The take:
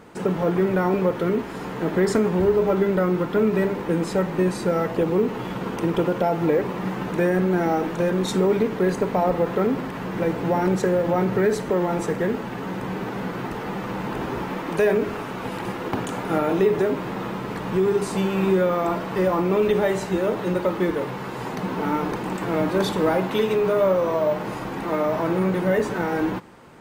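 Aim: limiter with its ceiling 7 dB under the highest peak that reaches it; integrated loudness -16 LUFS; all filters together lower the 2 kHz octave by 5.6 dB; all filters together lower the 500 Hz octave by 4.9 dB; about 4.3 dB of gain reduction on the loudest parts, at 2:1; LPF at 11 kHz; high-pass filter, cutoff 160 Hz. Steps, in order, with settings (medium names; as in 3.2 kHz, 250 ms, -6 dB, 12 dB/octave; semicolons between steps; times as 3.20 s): high-pass 160 Hz; low-pass 11 kHz; peaking EQ 500 Hz -6 dB; peaking EQ 2 kHz -7 dB; compression 2:1, threshold -27 dBFS; trim +15 dB; peak limiter -6 dBFS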